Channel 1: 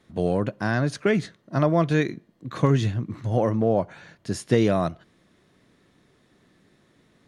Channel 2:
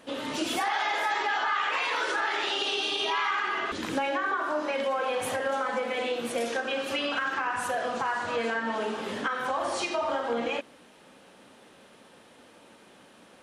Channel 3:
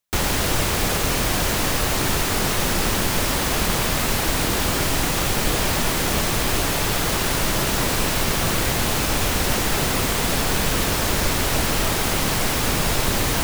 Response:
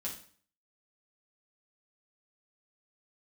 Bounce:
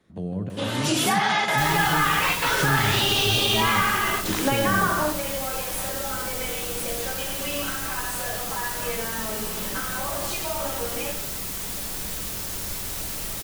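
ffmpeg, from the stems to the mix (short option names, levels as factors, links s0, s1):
-filter_complex "[0:a]highshelf=f=3400:g=-9.5,acrossover=split=250[s0][s1];[s1]acompressor=threshold=0.0141:ratio=3[s2];[s0][s2]amix=inputs=2:normalize=0,volume=0.562,asplit=4[s3][s4][s5][s6];[s4]volume=0.316[s7];[s5]volume=0.562[s8];[1:a]adelay=500,volume=1.33,asplit=2[s9][s10];[s10]volume=0.501[s11];[2:a]acrossover=split=160|3000[s12][s13][s14];[s13]acompressor=threshold=0.0631:ratio=6[s15];[s12][s15][s14]amix=inputs=3:normalize=0,adelay=1450,volume=0.141,asplit=2[s16][s17];[s17]volume=0.631[s18];[s6]apad=whole_len=613969[s19];[s9][s19]sidechaingate=range=0.0224:threshold=0.001:ratio=16:detection=peak[s20];[3:a]atrim=start_sample=2205[s21];[s7][s11][s18]amix=inputs=3:normalize=0[s22];[s22][s21]afir=irnorm=-1:irlink=0[s23];[s8]aecho=0:1:156|312|468|624|780|936|1092|1248|1404:1|0.57|0.325|0.185|0.106|0.0602|0.0343|0.0195|0.0111[s24];[s3][s20][s16][s23][s24]amix=inputs=5:normalize=0,highshelf=f=6200:g=11"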